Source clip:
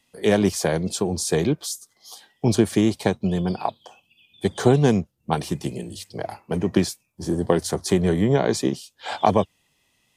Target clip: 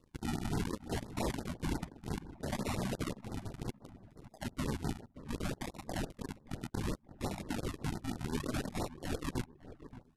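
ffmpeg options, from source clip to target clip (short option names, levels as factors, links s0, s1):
-filter_complex "[0:a]highpass=71,aderivative,bandreject=f=2600:w=7.1,acrossover=split=130|1900[s0][s1][s2];[s0]acontrast=69[s3];[s3][s1][s2]amix=inputs=3:normalize=0,alimiter=limit=0.0631:level=0:latency=1:release=199,acompressor=mode=upward:threshold=0.00708:ratio=2.5,acrusher=samples=32:mix=1:aa=0.000001:lfo=1:lforange=32:lforate=0.65,aeval=exprs='0.0188*(abs(mod(val(0)/0.0188+3,4)-2)-1)':c=same,aeval=exprs='0.0188*(cos(1*acos(clip(val(0)/0.0188,-1,1)))-cos(1*PI/2))+0.00133*(cos(4*acos(clip(val(0)/0.0188,-1,1)))-cos(4*PI/2))+0.000211*(cos(6*acos(clip(val(0)/0.0188,-1,1)))-cos(6*PI/2))+0.00299*(cos(7*acos(clip(val(0)/0.0188,-1,1)))-cos(7*PI/2))':c=same,asetrate=25476,aresample=44100,atempo=1.73107,asplit=2[s4][s5];[s5]adelay=576,lowpass=f=1300:p=1,volume=0.2,asplit=2[s6][s7];[s7]adelay=576,lowpass=f=1300:p=1,volume=0.39,asplit=2[s8][s9];[s9]adelay=576,lowpass=f=1300:p=1,volume=0.39,asplit=2[s10][s11];[s11]adelay=576,lowpass=f=1300:p=1,volume=0.39[s12];[s6][s8][s10][s12]amix=inputs=4:normalize=0[s13];[s4][s13]amix=inputs=2:normalize=0,afftfilt=real='re*(1-between(b*sr/1024,380*pow(2900/380,0.5+0.5*sin(2*PI*5.8*pts/sr))/1.41,380*pow(2900/380,0.5+0.5*sin(2*PI*5.8*pts/sr))*1.41))':imag='im*(1-between(b*sr/1024,380*pow(2900/380,0.5+0.5*sin(2*PI*5.8*pts/sr))/1.41,380*pow(2900/380,0.5+0.5*sin(2*PI*5.8*pts/sr))*1.41))':win_size=1024:overlap=0.75,volume=2.24"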